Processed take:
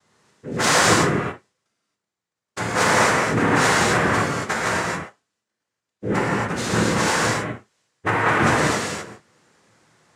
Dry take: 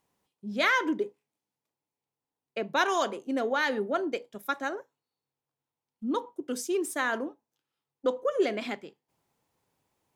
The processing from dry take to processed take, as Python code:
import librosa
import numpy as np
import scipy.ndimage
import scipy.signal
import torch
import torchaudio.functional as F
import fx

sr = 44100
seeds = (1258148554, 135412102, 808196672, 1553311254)

p1 = fx.law_mismatch(x, sr, coded='mu')
p2 = fx.noise_vocoder(p1, sr, seeds[0], bands=3)
p3 = np.clip(10.0 ** (23.5 / 20.0) * p2, -1.0, 1.0) / 10.0 ** (23.5 / 20.0)
p4 = p2 + (p3 * librosa.db_to_amplitude(-9.0))
y = fx.rev_gated(p4, sr, seeds[1], gate_ms=300, shape='flat', drr_db=-6.5)